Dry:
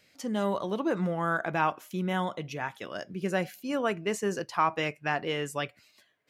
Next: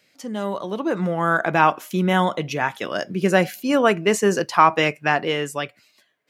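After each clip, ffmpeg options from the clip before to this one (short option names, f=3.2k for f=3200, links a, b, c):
-af "highpass=130,dynaudnorm=f=210:g=11:m=10.5dB,volume=2dB"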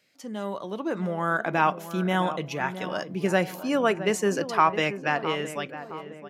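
-filter_complex "[0:a]asplit=2[a][b];[b]adelay=664,lowpass=f=1.4k:p=1,volume=-11dB,asplit=2[c][d];[d]adelay=664,lowpass=f=1.4k:p=1,volume=0.54,asplit=2[e][f];[f]adelay=664,lowpass=f=1.4k:p=1,volume=0.54,asplit=2[g][h];[h]adelay=664,lowpass=f=1.4k:p=1,volume=0.54,asplit=2[i][j];[j]adelay=664,lowpass=f=1.4k:p=1,volume=0.54,asplit=2[k][l];[l]adelay=664,lowpass=f=1.4k:p=1,volume=0.54[m];[a][c][e][g][i][k][m]amix=inputs=7:normalize=0,volume=-6dB"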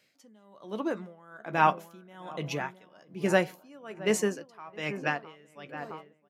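-filter_complex "[0:a]asplit=2[a][b];[b]adelay=14,volume=-12dB[c];[a][c]amix=inputs=2:normalize=0,aeval=exprs='val(0)*pow(10,-27*(0.5-0.5*cos(2*PI*1.2*n/s))/20)':c=same"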